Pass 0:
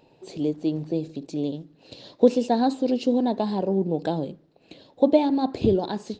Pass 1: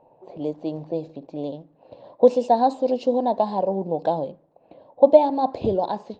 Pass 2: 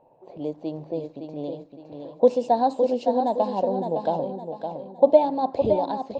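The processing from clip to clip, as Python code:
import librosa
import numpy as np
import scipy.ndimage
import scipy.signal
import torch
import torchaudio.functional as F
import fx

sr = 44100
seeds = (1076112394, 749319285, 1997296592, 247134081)

y1 = fx.env_lowpass(x, sr, base_hz=1300.0, full_db=-18.5)
y1 = fx.band_shelf(y1, sr, hz=740.0, db=11.5, octaves=1.3)
y1 = y1 * librosa.db_to_amplitude(-4.5)
y2 = fx.echo_feedback(y1, sr, ms=562, feedback_pct=37, wet_db=-7)
y2 = y2 * librosa.db_to_amplitude(-2.5)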